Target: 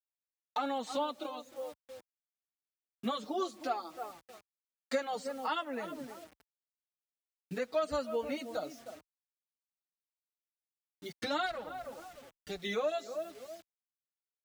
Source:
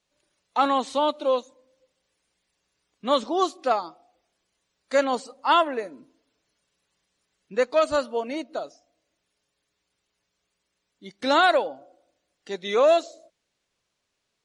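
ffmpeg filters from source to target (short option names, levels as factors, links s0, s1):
-filter_complex "[0:a]asplit=3[s0][s1][s2];[s0]afade=t=out:st=11.45:d=0.02[s3];[s1]aeval=exprs='if(lt(val(0),0),0.251*val(0),val(0))':c=same,afade=t=in:st=11.45:d=0.02,afade=t=out:st=12.58:d=0.02[s4];[s2]afade=t=in:st=12.58:d=0.02[s5];[s3][s4][s5]amix=inputs=3:normalize=0,asplit=2[s6][s7];[s7]adelay=309,lowpass=f=1200:p=1,volume=0.178,asplit=2[s8][s9];[s9]adelay=309,lowpass=f=1200:p=1,volume=0.25,asplit=2[s10][s11];[s11]adelay=309,lowpass=f=1200:p=1,volume=0.25[s12];[s8][s10][s12]amix=inputs=3:normalize=0[s13];[s6][s13]amix=inputs=2:normalize=0,asubboost=boost=2:cutoff=210,agate=range=0.0224:threshold=0.00316:ratio=3:detection=peak,acrusher=bits=8:mix=0:aa=0.000001,acompressor=threshold=0.0224:ratio=4,highpass=58,bandreject=f=1000:w=8.5,asplit=2[s14][s15];[s15]adelay=5.6,afreqshift=-2.6[s16];[s14][s16]amix=inputs=2:normalize=1,volume=1.41"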